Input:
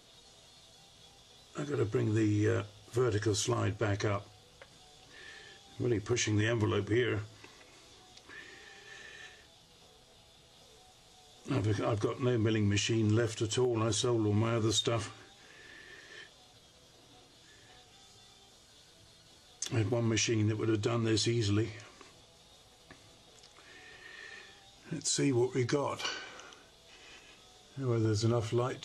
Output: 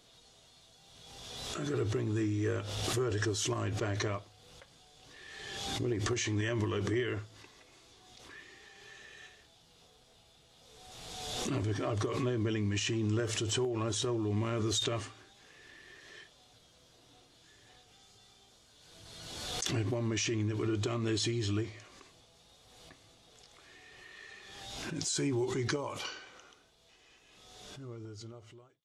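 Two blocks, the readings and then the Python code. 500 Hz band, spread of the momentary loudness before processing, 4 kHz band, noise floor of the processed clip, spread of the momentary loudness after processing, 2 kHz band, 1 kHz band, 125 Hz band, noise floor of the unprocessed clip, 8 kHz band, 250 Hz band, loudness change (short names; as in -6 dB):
-2.5 dB, 20 LU, +0.5 dB, -63 dBFS, 20 LU, -1.0 dB, -1.5 dB, -2.5 dB, -60 dBFS, -0.5 dB, -2.5 dB, -2.0 dB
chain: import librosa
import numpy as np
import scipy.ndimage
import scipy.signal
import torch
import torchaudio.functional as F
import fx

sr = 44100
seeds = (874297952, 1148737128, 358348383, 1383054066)

y = fx.fade_out_tail(x, sr, length_s=3.6)
y = fx.pre_swell(y, sr, db_per_s=31.0)
y = F.gain(torch.from_numpy(y), -3.0).numpy()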